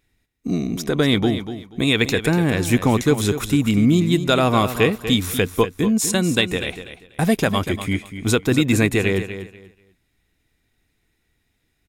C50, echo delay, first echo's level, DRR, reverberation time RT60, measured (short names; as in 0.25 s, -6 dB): none, 0.242 s, -11.0 dB, none, none